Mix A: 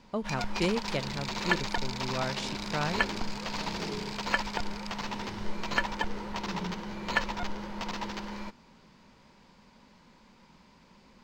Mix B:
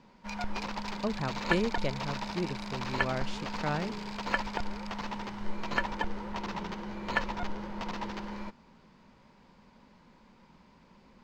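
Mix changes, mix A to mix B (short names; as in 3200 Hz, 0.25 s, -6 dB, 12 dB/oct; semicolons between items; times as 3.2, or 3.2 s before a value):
speech: entry +0.90 s; second sound -8.0 dB; master: add high shelf 3000 Hz -8.5 dB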